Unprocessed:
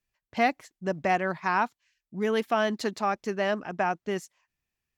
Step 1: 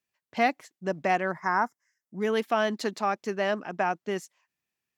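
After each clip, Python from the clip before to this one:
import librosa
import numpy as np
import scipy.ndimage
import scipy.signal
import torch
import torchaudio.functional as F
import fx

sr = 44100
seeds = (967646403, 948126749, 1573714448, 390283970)

y = scipy.signal.sosfilt(scipy.signal.butter(2, 160.0, 'highpass', fs=sr, output='sos'), x)
y = fx.spec_box(y, sr, start_s=1.31, length_s=0.89, low_hz=2200.0, high_hz=4900.0, gain_db=-20)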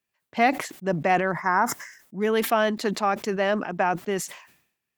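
y = fx.peak_eq(x, sr, hz=5600.0, db=-4.0, octaves=0.92)
y = fx.sustainer(y, sr, db_per_s=93.0)
y = y * 10.0 ** (3.5 / 20.0)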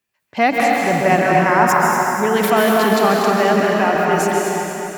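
y = fx.echo_feedback(x, sr, ms=239, feedback_pct=54, wet_db=-9.0)
y = fx.rev_plate(y, sr, seeds[0], rt60_s=3.0, hf_ratio=0.8, predelay_ms=120, drr_db=-2.5)
y = y * 10.0 ** (4.5 / 20.0)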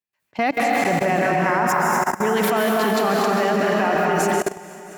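y = fx.level_steps(x, sr, step_db=19)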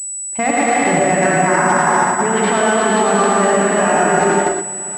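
y = fx.rev_gated(x, sr, seeds[1], gate_ms=140, shape='rising', drr_db=-0.5)
y = fx.pwm(y, sr, carrier_hz=7900.0)
y = y * 10.0 ** (2.0 / 20.0)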